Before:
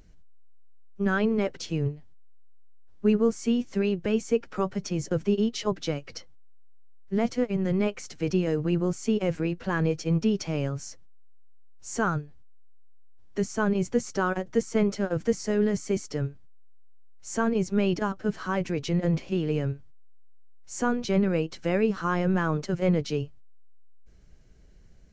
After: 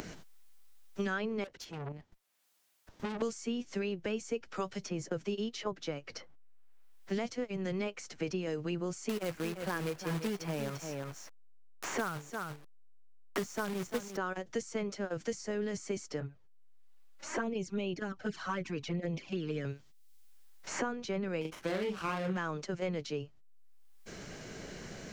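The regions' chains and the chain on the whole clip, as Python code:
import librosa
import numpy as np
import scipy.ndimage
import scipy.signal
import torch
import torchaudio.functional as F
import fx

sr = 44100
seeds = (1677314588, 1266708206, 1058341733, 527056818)

y = fx.chain(x, sr, fx.level_steps(step_db=9),
    fx.tube_stage(drive_db=38.0, bias=0.55), at=(1.44, 3.22))
y = fx.chain(y, sr, fx.quant_companded(bits=4),
    fx.echo_single(ms=345, db=-10.5), at=(9.09, 14.17))
y = fx.chain(y, sr, fx.high_shelf(hz=4400.0, db=-8.0),
    fx.env_flanger(rest_ms=4.1, full_db=-20.0), at=(16.2, 19.65))
y = fx.chain(y, sr, fx.highpass(hz=61.0, slope=12),
    fx.doubler(ms=38.0, db=-3.5),
    fx.running_max(window=9), at=(21.41, 22.37))
y = fx.low_shelf(y, sr, hz=310.0, db=-8.5)
y = fx.band_squash(y, sr, depth_pct=100)
y = y * librosa.db_to_amplitude(-6.5)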